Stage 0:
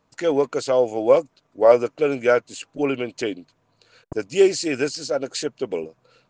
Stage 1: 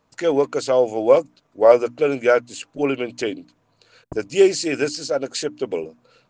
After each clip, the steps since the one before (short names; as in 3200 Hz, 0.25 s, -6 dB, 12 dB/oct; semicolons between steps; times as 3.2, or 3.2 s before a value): notches 60/120/180/240/300 Hz; gain +1.5 dB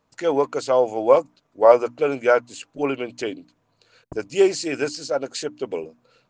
dynamic EQ 960 Hz, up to +8 dB, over -32 dBFS, Q 1.4; gain -3.5 dB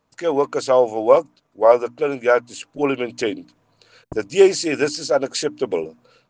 AGC gain up to 6 dB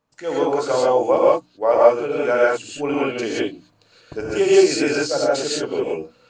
non-linear reverb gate 0.2 s rising, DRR -6 dB; gain -6 dB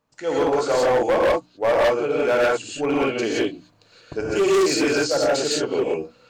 hard clip -16 dBFS, distortion -8 dB; gain +1 dB